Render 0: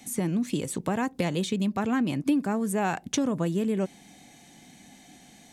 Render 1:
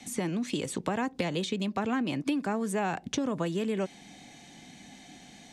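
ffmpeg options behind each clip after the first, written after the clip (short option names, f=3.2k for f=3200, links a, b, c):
-filter_complex "[0:a]lowpass=4.3k,aemphasis=mode=production:type=50kf,acrossover=split=300|750[a][b][c];[a]acompressor=threshold=-37dB:ratio=4[d];[b]acompressor=threshold=-33dB:ratio=4[e];[c]acompressor=threshold=-35dB:ratio=4[f];[d][e][f]amix=inputs=3:normalize=0,volume=1.5dB"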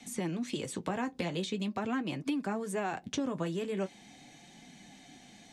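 -af "flanger=delay=4.2:depth=8.6:regen=-44:speed=0.43:shape=triangular"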